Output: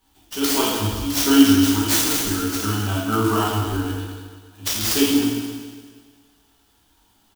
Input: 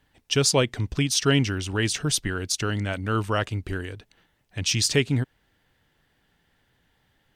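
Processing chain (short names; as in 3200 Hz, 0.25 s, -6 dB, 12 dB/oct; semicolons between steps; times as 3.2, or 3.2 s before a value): high shelf 4600 Hz +12 dB; notches 60/120/180/240/300/360/420 Hz; auto swell 0.161 s; fixed phaser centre 540 Hz, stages 6; doubler 18 ms -2 dB; reverb RT60 1.7 s, pre-delay 5 ms, DRR -6 dB; clock jitter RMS 0.03 ms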